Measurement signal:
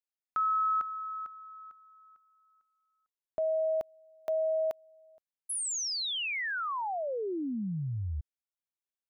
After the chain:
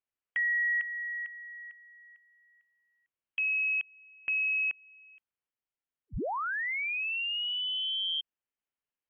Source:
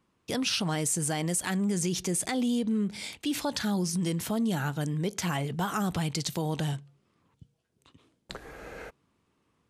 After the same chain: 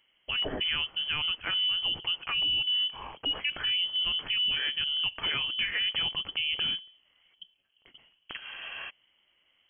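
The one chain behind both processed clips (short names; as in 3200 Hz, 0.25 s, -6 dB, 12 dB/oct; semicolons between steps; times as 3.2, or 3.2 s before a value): in parallel at -2 dB: compressor, threshold -39 dBFS; on the sum: inverted band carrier 3200 Hz; gain -2 dB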